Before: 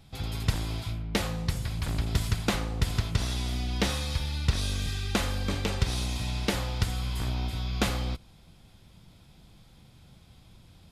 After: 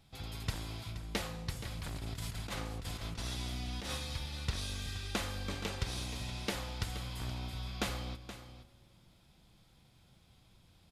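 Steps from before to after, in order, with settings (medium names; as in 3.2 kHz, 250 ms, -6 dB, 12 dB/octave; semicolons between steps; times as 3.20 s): 1.67–3.97 s: compressor with a negative ratio -30 dBFS, ratio -1; bass shelf 350 Hz -4 dB; delay 474 ms -12.5 dB; reverberation RT60 2.5 s, pre-delay 3 ms, DRR 19.5 dB; trim -7 dB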